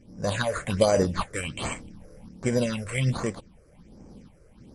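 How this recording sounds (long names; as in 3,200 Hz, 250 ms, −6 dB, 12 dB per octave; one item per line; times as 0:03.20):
aliases and images of a low sample rate 5,400 Hz, jitter 0%
sample-and-hold tremolo
phaser sweep stages 6, 1.3 Hz, lowest notch 220–3,600 Hz
MP3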